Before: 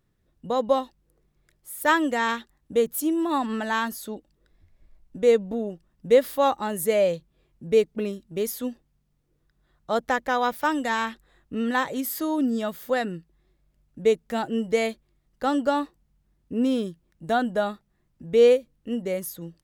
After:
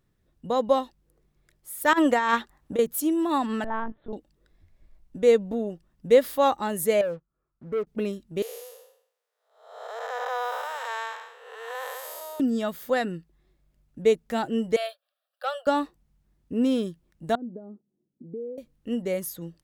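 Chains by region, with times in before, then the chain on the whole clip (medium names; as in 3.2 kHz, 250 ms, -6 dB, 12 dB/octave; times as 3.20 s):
1.93–2.79 s: peaking EQ 980 Hz +7.5 dB 1.9 oct + compressor with a negative ratio -21 dBFS, ratio -0.5
3.64–4.13 s: low-pass 1 kHz + LPC vocoder at 8 kHz pitch kept
7.01–7.87 s: four-pole ladder low-pass 1.4 kHz, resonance 80% + waveshaping leveller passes 2
8.42–12.40 s: spectral blur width 376 ms + steep high-pass 450 Hz 72 dB/octave
14.76–15.67 s: steep high-pass 530 Hz 72 dB/octave + static phaser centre 1.4 kHz, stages 8 + transformer saturation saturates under 820 Hz
17.35–18.58 s: compression 3:1, threshold -33 dBFS + Butterworth band-pass 290 Hz, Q 1.2
whole clip: none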